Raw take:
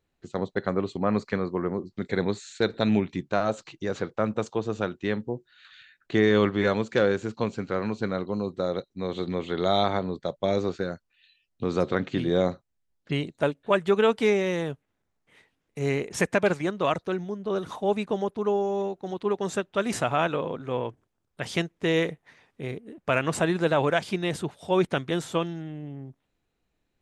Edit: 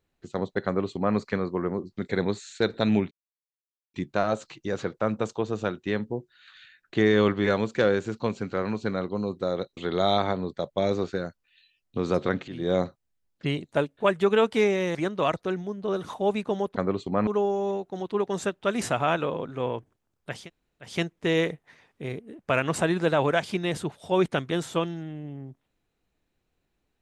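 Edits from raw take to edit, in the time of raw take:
0.65–1.16 s: copy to 18.38 s
3.11 s: insert silence 0.83 s
8.94–9.43 s: delete
12.14–12.44 s: fade in, from -15 dB
14.61–16.57 s: delete
21.49 s: insert room tone 0.52 s, crossfade 0.24 s

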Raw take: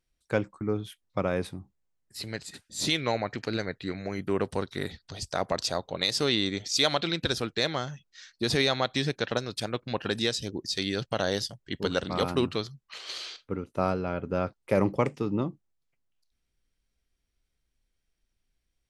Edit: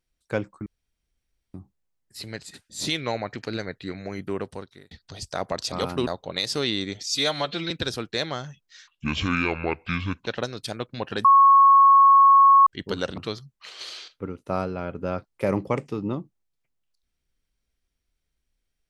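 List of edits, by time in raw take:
0.66–1.54 s: room tone
4.21–4.91 s: fade out
6.71–7.14 s: stretch 1.5×
8.31–9.20 s: speed 64%
10.18–11.60 s: bleep 1.1 kHz -10.5 dBFS
12.11–12.46 s: move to 5.72 s

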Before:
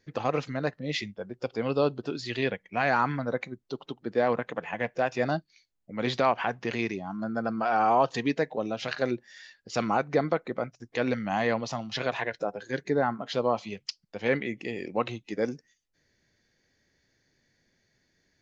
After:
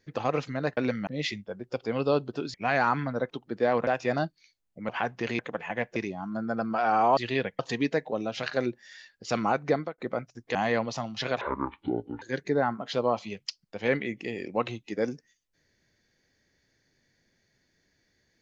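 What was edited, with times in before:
2.24–2.66 s: move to 8.04 s
3.42–3.85 s: delete
4.42–4.99 s: move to 6.83 s
6.01–6.33 s: delete
10.16–10.43 s: fade out
11.00–11.30 s: move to 0.77 s
12.16–12.62 s: speed 57%

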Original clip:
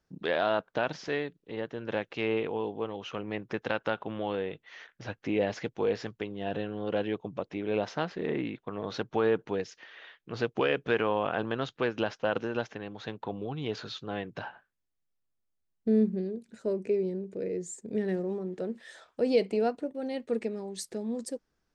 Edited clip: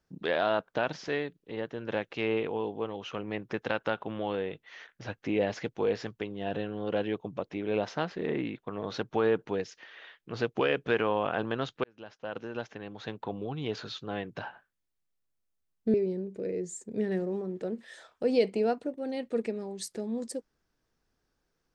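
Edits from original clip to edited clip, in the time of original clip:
11.84–13.10 s: fade in
15.94–16.91 s: delete

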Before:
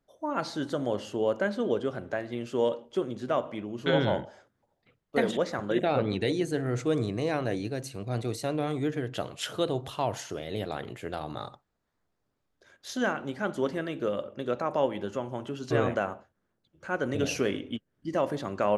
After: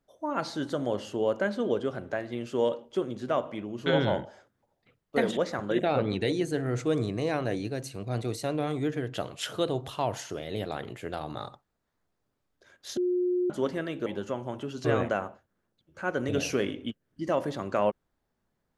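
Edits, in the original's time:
12.97–13.50 s: bleep 359 Hz -23.5 dBFS
14.06–14.92 s: delete

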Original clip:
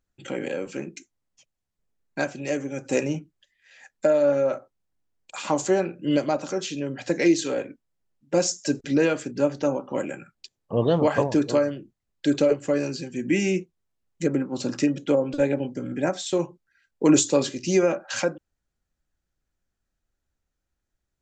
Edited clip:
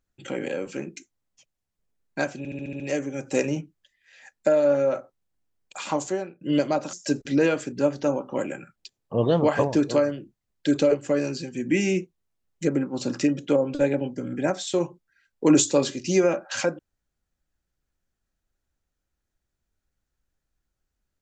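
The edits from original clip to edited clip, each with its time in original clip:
2.38 s: stutter 0.07 s, 7 plays
5.39–5.99 s: fade out, to -22 dB
6.51–8.52 s: delete

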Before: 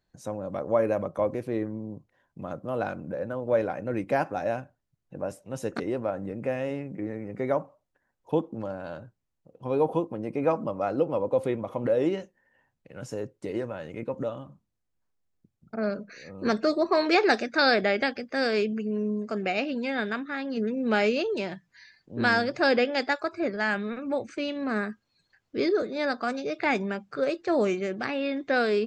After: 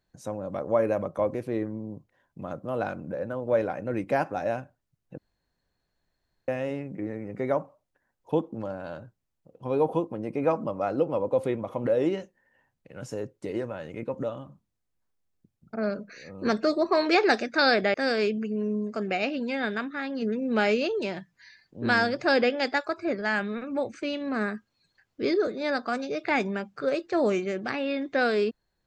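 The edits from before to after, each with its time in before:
5.18–6.48 s: room tone
17.94–18.29 s: delete

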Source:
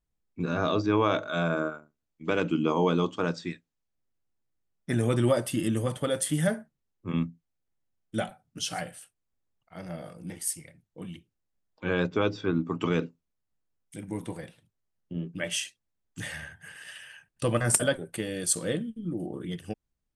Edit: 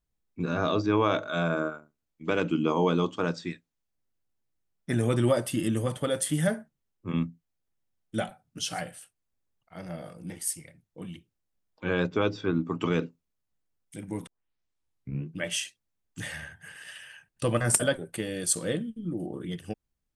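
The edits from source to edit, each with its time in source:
14.27 s: tape start 1.09 s

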